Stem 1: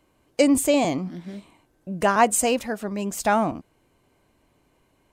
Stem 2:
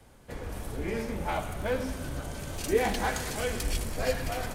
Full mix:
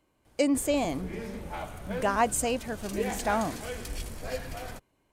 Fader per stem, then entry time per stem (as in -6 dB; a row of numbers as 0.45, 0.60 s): -7.0, -6.0 dB; 0.00, 0.25 s